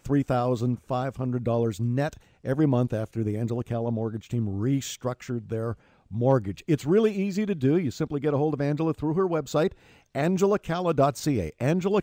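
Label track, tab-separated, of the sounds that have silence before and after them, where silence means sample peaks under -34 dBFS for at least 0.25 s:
2.450000	5.730000	sound
6.130000	9.720000	sound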